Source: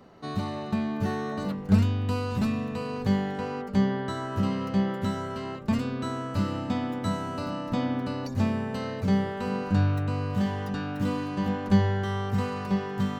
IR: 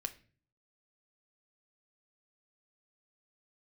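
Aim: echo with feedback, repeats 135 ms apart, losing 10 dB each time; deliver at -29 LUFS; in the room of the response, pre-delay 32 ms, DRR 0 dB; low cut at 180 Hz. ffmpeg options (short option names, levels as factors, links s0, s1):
-filter_complex "[0:a]highpass=180,aecho=1:1:135|270|405|540:0.316|0.101|0.0324|0.0104,asplit=2[s0][s1];[1:a]atrim=start_sample=2205,adelay=32[s2];[s1][s2]afir=irnorm=-1:irlink=0,volume=1.12[s3];[s0][s3]amix=inputs=2:normalize=0,volume=0.944"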